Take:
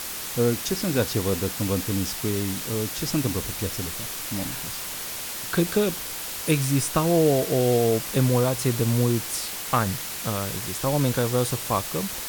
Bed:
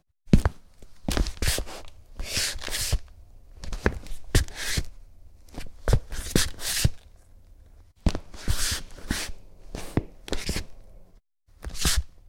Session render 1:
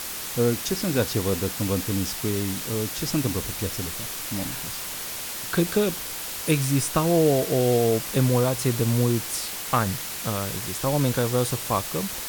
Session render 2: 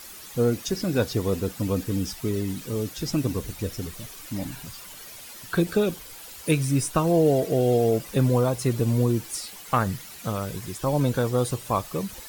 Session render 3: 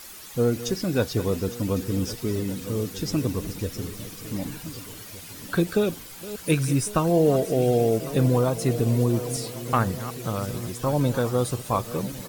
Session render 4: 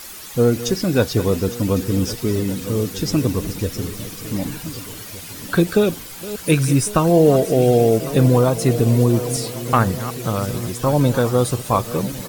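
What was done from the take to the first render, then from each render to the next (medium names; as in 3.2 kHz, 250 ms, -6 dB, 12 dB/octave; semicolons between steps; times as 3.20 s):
no audible change
noise reduction 12 dB, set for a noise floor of -33 dBFS
backward echo that repeats 551 ms, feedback 58%, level -14 dB; echo from a far wall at 260 m, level -16 dB
trim +6.5 dB; peak limiter -3 dBFS, peak gain reduction 1 dB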